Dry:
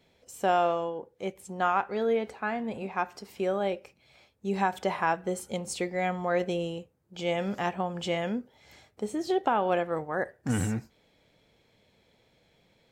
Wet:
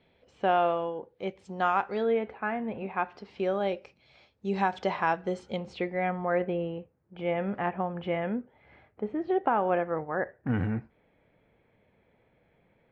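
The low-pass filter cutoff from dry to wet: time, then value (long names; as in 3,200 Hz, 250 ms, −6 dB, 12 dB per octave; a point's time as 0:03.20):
low-pass filter 24 dB per octave
0:00.91 3,500 Hz
0:01.88 6,600 Hz
0:02.21 2,700 Hz
0:02.73 2,700 Hz
0:03.62 5,300 Hz
0:05.29 5,300 Hz
0:06.15 2,300 Hz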